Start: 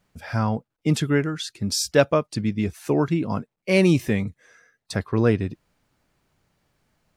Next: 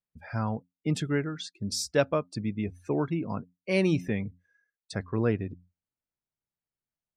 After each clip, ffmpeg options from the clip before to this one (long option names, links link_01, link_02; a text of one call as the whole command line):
ffmpeg -i in.wav -af "bandreject=frequency=89.05:width_type=h:width=4,bandreject=frequency=178.1:width_type=h:width=4,bandreject=frequency=267.15:width_type=h:width=4,afftdn=noise_reduction=23:noise_floor=-41,volume=-7dB" out.wav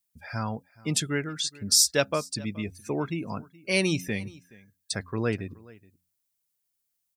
ffmpeg -i in.wav -af "aecho=1:1:423:0.075,crystalizer=i=6:c=0,volume=-2dB" out.wav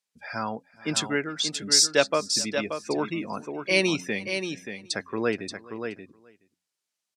ffmpeg -i in.wav -filter_complex "[0:a]highpass=260,lowpass=6500,asplit=2[link_01][link_02];[link_02]aecho=0:1:580:0.422[link_03];[link_01][link_03]amix=inputs=2:normalize=0,volume=3.5dB" out.wav